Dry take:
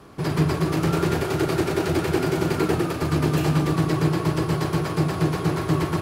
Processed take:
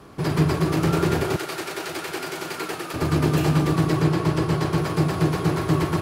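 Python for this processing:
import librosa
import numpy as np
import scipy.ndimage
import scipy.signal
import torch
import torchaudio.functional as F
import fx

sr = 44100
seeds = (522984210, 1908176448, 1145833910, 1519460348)

y = fx.highpass(x, sr, hz=1300.0, slope=6, at=(1.36, 2.94))
y = fx.high_shelf(y, sr, hz=11000.0, db=-7.5, at=(4.01, 4.78))
y = y * 10.0 ** (1.0 / 20.0)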